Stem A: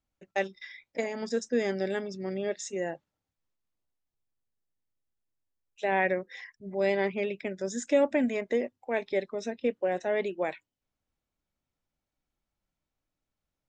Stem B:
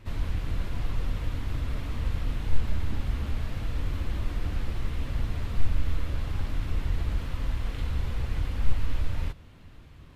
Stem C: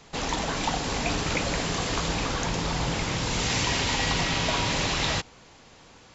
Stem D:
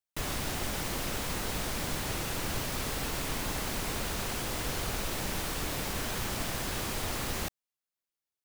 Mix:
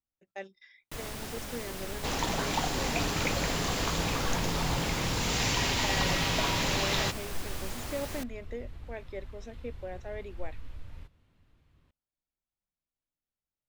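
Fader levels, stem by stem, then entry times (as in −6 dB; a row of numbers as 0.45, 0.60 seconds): −12.0, −16.0, −3.0, −6.0 decibels; 0.00, 1.75, 1.90, 0.75 seconds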